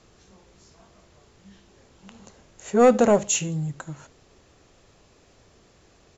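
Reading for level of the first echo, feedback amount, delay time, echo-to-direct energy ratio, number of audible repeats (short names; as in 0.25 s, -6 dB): -23.0 dB, 30%, 72 ms, -22.5 dB, 2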